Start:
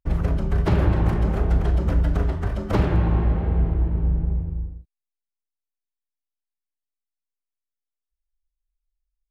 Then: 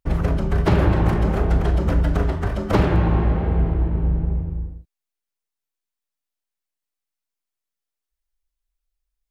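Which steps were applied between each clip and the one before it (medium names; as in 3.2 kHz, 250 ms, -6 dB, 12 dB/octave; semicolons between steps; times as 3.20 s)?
bass shelf 140 Hz -5 dB; trim +5 dB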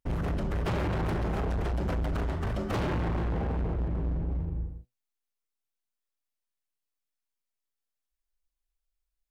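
flange 1 Hz, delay 7.8 ms, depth 1.1 ms, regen +73%; overload inside the chain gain 27 dB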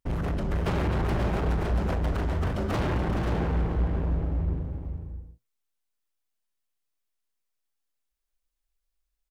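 multi-tap echo 427/533 ms -8/-7 dB; trim +1.5 dB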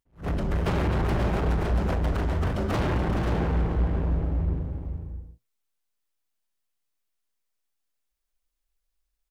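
attacks held to a fixed rise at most 240 dB/s; trim +1.5 dB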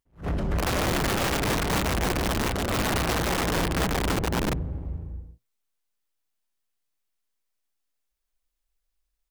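integer overflow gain 21 dB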